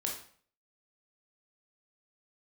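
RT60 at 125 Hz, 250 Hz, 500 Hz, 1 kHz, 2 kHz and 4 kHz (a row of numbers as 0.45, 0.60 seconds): 0.60, 0.50, 0.50, 0.50, 0.50, 0.45 seconds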